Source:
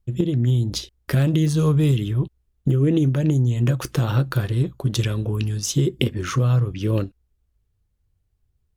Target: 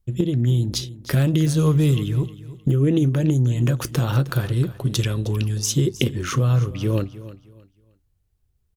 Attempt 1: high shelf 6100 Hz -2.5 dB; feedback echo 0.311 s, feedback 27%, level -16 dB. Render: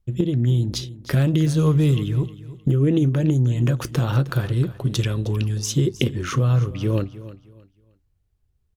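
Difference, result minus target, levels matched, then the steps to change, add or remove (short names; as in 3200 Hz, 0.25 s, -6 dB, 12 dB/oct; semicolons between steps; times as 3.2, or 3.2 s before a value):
8000 Hz band -3.5 dB
change: high shelf 6100 Hz +4.5 dB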